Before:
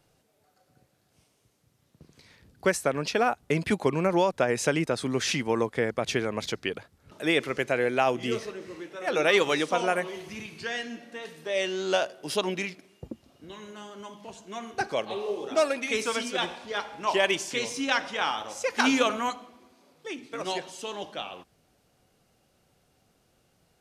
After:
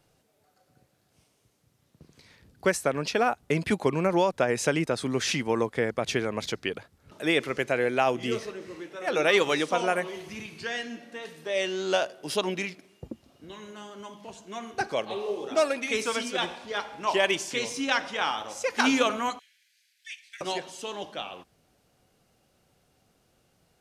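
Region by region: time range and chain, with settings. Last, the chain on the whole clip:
19.39–20.41 steep high-pass 1600 Hz 96 dB/oct + core saturation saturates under 1500 Hz
whole clip: dry

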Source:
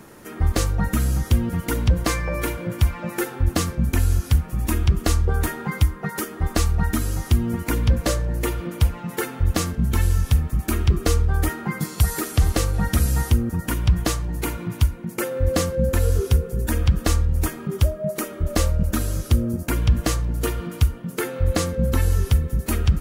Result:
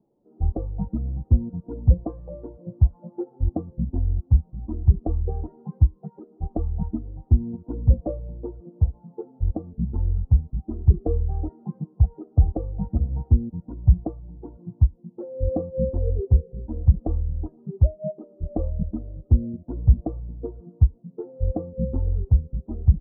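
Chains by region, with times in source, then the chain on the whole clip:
8.62–9.64 notches 60/120/180 Hz + dynamic EQ 2100 Hz, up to -5 dB, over -41 dBFS, Q 0.98
whole clip: per-bin expansion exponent 1.5; steep low-pass 760 Hz 36 dB/oct; upward expander 1.5:1, over -33 dBFS; gain +4 dB

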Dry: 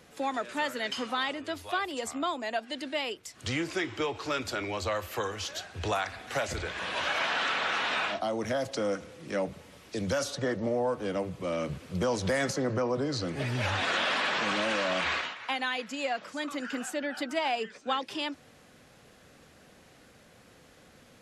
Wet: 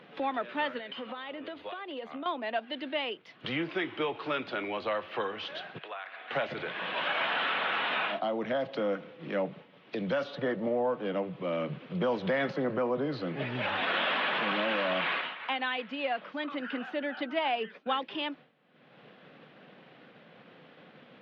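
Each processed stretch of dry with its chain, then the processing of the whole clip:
0.78–2.26 notch 5400 Hz, Q 5.1 + compressor, threshold -39 dBFS + bell 520 Hz +5.5 dB 0.33 oct
5.78–6.31 bell 860 Hz -5.5 dB 0.38 oct + compressor 2.5:1, threshold -41 dBFS + BPF 660–3400 Hz
whole clip: expander -43 dBFS; elliptic band-pass 150–3300 Hz, stop band 40 dB; upward compressor, threshold -34 dBFS

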